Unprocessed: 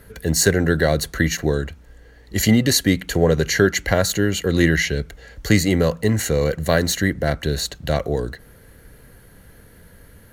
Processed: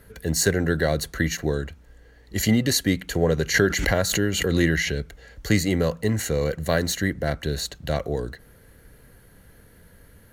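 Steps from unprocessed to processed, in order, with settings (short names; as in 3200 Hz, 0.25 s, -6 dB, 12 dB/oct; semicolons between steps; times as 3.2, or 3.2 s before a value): 3.54–4.99 backwards sustainer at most 36 dB/s; gain -4.5 dB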